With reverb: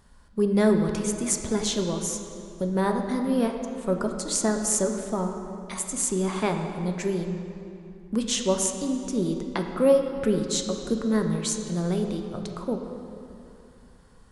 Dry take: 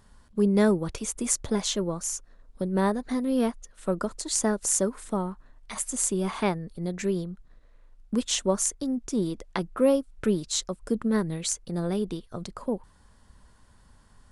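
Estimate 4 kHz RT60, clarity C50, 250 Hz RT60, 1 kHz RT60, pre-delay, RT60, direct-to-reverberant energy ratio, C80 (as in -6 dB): 1.9 s, 5.5 dB, 2.9 s, 2.7 s, 3 ms, 2.8 s, 3.5 dB, 6.5 dB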